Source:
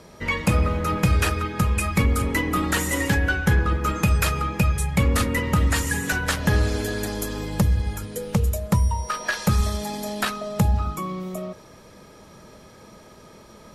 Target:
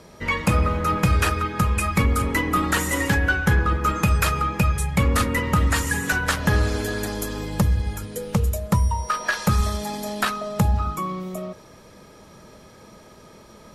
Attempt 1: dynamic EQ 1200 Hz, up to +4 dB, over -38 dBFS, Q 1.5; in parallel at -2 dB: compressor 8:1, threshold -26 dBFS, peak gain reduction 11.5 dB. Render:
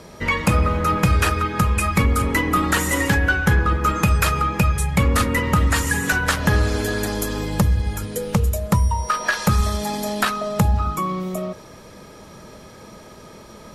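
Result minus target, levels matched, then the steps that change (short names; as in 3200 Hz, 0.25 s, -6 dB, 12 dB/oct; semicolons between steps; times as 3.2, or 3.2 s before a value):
compressor: peak gain reduction +11.5 dB
remove: compressor 8:1, threshold -26 dBFS, peak gain reduction 11.5 dB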